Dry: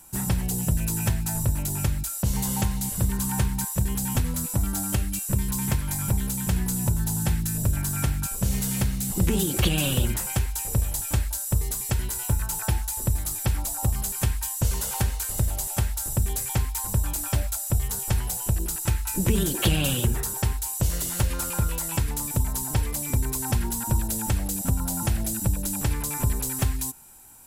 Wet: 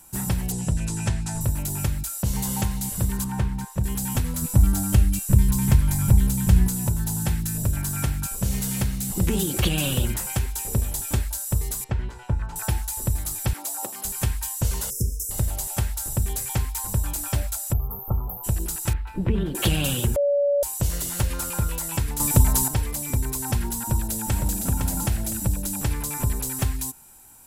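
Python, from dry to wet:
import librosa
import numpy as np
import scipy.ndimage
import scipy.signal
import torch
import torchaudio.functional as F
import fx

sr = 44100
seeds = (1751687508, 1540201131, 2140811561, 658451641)

y = fx.lowpass(x, sr, hz=8900.0, slope=24, at=(0.52, 1.41))
y = fx.lowpass(y, sr, hz=1900.0, slope=6, at=(3.24, 3.84))
y = fx.low_shelf(y, sr, hz=200.0, db=10.5, at=(4.42, 6.68))
y = fx.small_body(y, sr, hz=(240.0, 390.0, 3500.0), ring_ms=45, db=7, at=(10.43, 11.22))
y = fx.bessel_lowpass(y, sr, hz=1800.0, order=2, at=(11.84, 12.56))
y = fx.highpass(y, sr, hz=280.0, slope=24, at=(13.53, 14.05))
y = fx.brickwall_bandstop(y, sr, low_hz=520.0, high_hz=5000.0, at=(14.9, 15.31))
y = fx.brickwall_bandstop(y, sr, low_hz=1400.0, high_hz=12000.0, at=(17.72, 18.43), fade=0.02)
y = fx.air_absorb(y, sr, metres=430.0, at=(18.93, 19.55))
y = fx.echo_throw(y, sr, start_s=23.8, length_s=0.77, ms=510, feedback_pct=30, wet_db=-4.5)
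y = fx.edit(y, sr, fx.bleep(start_s=20.16, length_s=0.47, hz=571.0, db=-17.5),
    fx.clip_gain(start_s=22.2, length_s=0.48, db=8.0), tone=tone)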